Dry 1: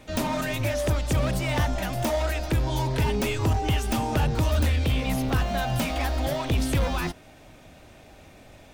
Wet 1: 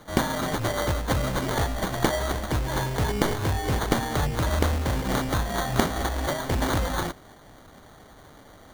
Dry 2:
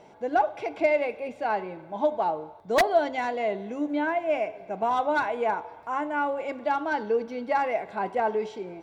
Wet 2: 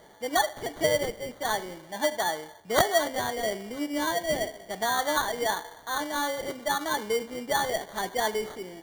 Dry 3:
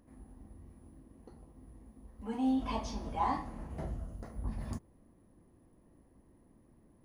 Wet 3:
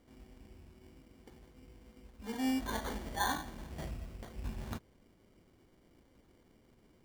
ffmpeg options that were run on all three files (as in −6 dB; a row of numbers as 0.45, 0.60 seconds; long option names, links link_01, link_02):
-af "crystalizer=i=4:c=0,acrusher=samples=17:mix=1:aa=0.000001,volume=-3dB"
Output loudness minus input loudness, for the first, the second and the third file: −0.5, −1.0, −2.0 LU